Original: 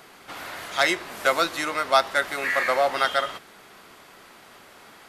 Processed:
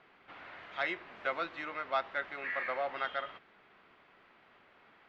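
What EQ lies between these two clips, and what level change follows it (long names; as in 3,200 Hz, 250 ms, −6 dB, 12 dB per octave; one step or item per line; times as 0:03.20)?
transistor ladder low-pass 3,400 Hz, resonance 25%
−8.0 dB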